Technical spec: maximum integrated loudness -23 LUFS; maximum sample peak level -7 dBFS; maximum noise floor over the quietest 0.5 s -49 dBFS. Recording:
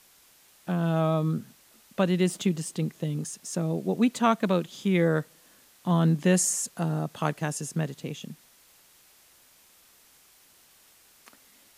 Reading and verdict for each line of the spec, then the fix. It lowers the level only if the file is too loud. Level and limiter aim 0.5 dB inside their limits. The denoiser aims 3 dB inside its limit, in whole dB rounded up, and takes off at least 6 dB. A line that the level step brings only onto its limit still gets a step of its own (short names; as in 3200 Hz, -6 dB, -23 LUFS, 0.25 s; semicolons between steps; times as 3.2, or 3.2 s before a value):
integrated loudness -27.0 LUFS: OK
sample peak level -10.0 dBFS: OK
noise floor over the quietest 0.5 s -59 dBFS: OK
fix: none